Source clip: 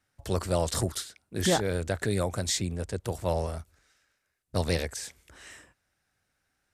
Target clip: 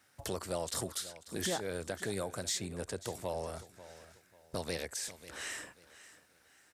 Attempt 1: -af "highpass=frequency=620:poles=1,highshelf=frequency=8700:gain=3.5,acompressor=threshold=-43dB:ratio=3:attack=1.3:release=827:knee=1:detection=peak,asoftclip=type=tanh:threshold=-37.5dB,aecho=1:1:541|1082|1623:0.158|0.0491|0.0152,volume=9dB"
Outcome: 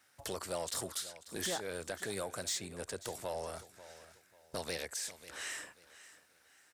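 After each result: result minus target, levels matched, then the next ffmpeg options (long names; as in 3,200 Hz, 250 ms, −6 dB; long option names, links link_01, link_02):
soft clipping: distortion +12 dB; 250 Hz band −3.5 dB
-af "highpass=frequency=620:poles=1,highshelf=frequency=8700:gain=3.5,acompressor=threshold=-43dB:ratio=3:attack=1.3:release=827:knee=1:detection=peak,asoftclip=type=tanh:threshold=-29.5dB,aecho=1:1:541|1082|1623:0.158|0.0491|0.0152,volume=9dB"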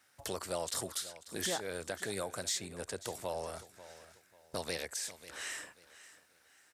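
250 Hz band −3.5 dB
-af "highpass=frequency=250:poles=1,highshelf=frequency=8700:gain=3.5,acompressor=threshold=-43dB:ratio=3:attack=1.3:release=827:knee=1:detection=peak,asoftclip=type=tanh:threshold=-29.5dB,aecho=1:1:541|1082|1623:0.158|0.0491|0.0152,volume=9dB"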